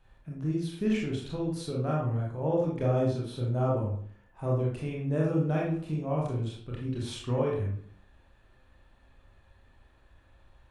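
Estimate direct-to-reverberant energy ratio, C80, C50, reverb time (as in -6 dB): -4.0 dB, 7.0 dB, 2.0 dB, 0.55 s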